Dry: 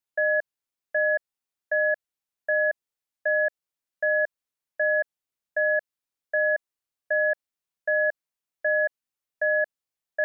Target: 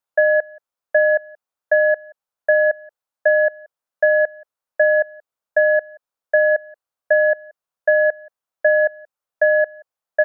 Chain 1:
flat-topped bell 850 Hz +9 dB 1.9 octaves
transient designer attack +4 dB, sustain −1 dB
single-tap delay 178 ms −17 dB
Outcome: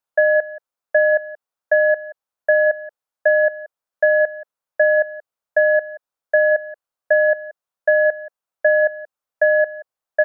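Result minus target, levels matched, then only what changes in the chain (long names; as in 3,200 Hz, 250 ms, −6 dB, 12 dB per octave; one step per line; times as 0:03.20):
echo-to-direct +7.5 dB
change: single-tap delay 178 ms −24.5 dB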